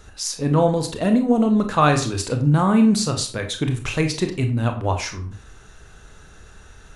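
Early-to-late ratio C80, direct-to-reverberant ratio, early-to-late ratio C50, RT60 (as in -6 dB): 14.0 dB, 5.0 dB, 10.0 dB, 0.45 s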